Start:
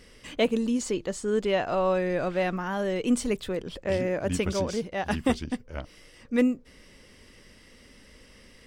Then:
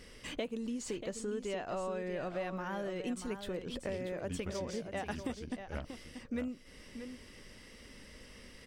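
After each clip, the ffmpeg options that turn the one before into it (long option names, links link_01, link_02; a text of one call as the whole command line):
ffmpeg -i in.wav -af "acompressor=threshold=-35dB:ratio=6,aecho=1:1:636:0.355,volume=-1dB" out.wav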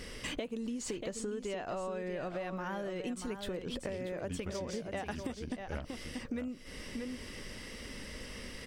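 ffmpeg -i in.wav -af "acompressor=threshold=-45dB:ratio=4,volume=8.5dB" out.wav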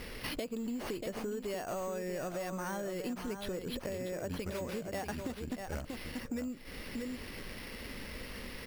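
ffmpeg -i in.wav -filter_complex "[0:a]asplit=2[link_01][link_02];[link_02]aeval=exprs='0.0168*(abs(mod(val(0)/0.0168+3,4)-2)-1)':channel_layout=same,volume=-12dB[link_03];[link_01][link_03]amix=inputs=2:normalize=0,acrusher=samples=6:mix=1:aa=0.000001,volume=-1dB" out.wav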